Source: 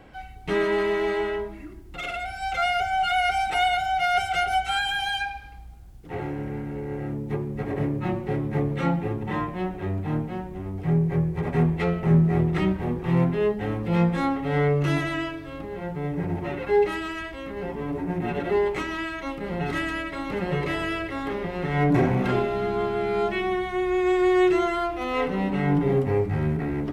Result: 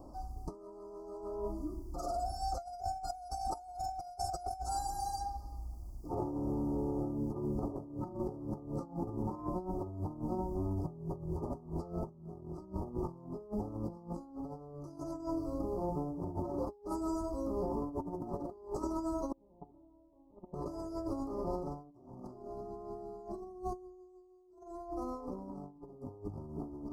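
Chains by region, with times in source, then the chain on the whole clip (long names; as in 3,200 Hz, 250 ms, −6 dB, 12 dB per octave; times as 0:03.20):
0:19.32–0:20.54: Butterworth low-pass 990 Hz 48 dB per octave + noise gate −24 dBFS, range −31 dB
whole clip: Chebyshev band-stop filter 1,200–4,700 Hz, order 5; comb filter 3.2 ms, depth 49%; compressor whose output falls as the input rises −32 dBFS, ratio −0.5; level −7 dB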